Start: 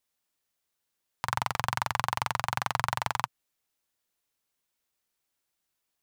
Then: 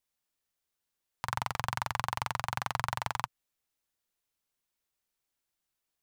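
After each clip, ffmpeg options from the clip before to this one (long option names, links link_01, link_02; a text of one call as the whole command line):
ffmpeg -i in.wav -af "lowshelf=frequency=65:gain=7,volume=-4dB" out.wav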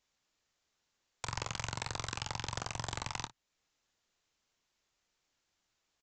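ffmpeg -i in.wav -af "alimiter=limit=-21dB:level=0:latency=1:release=392,aresample=16000,aeval=exprs='(mod(44.7*val(0)+1,2)-1)/44.7':channel_layout=same,aresample=44100,aecho=1:1:26|56:0.237|0.133,volume=7.5dB" out.wav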